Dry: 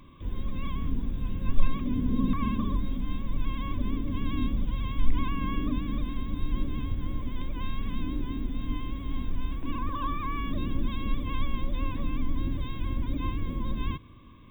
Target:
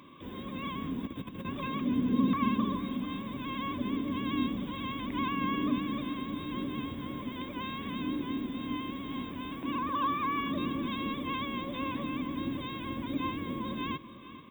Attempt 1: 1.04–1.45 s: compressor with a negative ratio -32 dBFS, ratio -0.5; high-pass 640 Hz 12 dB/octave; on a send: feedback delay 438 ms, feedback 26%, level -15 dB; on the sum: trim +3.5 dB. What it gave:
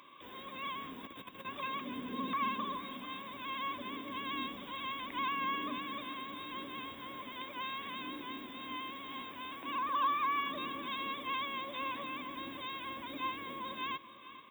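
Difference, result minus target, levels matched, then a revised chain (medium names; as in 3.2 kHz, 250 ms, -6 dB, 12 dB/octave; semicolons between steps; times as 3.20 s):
250 Hz band -9.0 dB
1.04–1.45 s: compressor with a negative ratio -32 dBFS, ratio -0.5; high-pass 220 Hz 12 dB/octave; on a send: feedback delay 438 ms, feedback 26%, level -15 dB; on the sum: trim +3.5 dB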